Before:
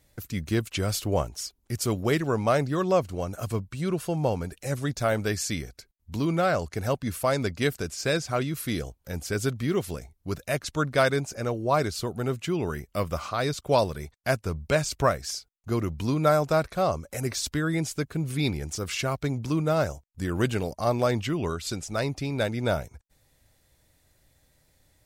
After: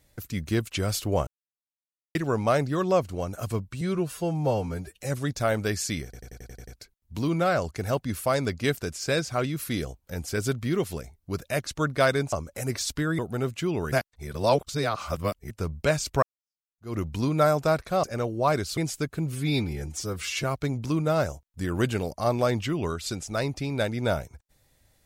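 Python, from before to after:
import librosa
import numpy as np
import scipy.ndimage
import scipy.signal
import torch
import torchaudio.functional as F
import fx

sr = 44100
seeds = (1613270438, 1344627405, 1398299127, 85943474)

y = fx.edit(x, sr, fx.silence(start_s=1.27, length_s=0.88),
    fx.stretch_span(start_s=3.81, length_s=0.79, factor=1.5),
    fx.stutter(start_s=5.65, slice_s=0.09, count=8),
    fx.swap(start_s=11.3, length_s=0.74, other_s=16.89, other_length_s=0.86),
    fx.reverse_span(start_s=12.77, length_s=1.59),
    fx.fade_in_span(start_s=15.08, length_s=0.74, curve='exp'),
    fx.stretch_span(start_s=18.3, length_s=0.74, factor=1.5), tone=tone)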